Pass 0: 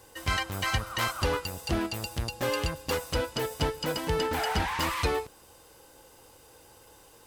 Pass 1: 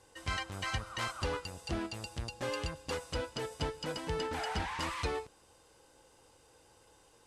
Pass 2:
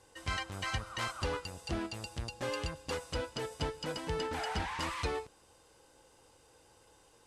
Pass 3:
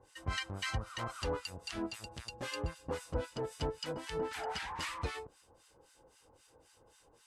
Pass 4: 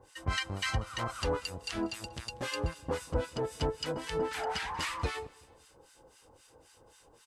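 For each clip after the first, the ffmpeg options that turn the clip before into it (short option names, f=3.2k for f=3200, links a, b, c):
-af "lowpass=f=9.9k:w=0.5412,lowpass=f=9.9k:w=1.3066,volume=-7.5dB"
-af anull
-filter_complex "[0:a]acrossover=split=1200[a][b];[a]aeval=exprs='val(0)*(1-1/2+1/2*cos(2*PI*3.8*n/s))':c=same[c];[b]aeval=exprs='val(0)*(1-1/2-1/2*cos(2*PI*3.8*n/s))':c=same[d];[c][d]amix=inputs=2:normalize=0,volume=2.5dB"
-af "aecho=1:1:189|378|567:0.0668|0.0301|0.0135,volume=4.5dB"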